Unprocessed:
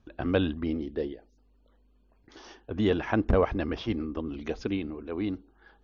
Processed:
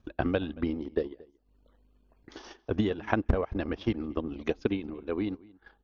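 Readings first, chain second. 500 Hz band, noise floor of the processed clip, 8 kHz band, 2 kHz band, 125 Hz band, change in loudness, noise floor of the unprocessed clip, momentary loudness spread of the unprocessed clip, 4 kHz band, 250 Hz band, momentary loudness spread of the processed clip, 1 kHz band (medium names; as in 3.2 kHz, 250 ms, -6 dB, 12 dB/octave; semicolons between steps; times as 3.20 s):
-2.0 dB, -69 dBFS, no reading, -1.0 dB, -1.5 dB, -2.0 dB, -64 dBFS, 11 LU, -3.5 dB, -1.5 dB, 15 LU, -1.0 dB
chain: compression 2.5:1, threshold -29 dBFS, peak gain reduction 7.5 dB; transient shaper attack +7 dB, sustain -12 dB; echo from a far wall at 39 m, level -23 dB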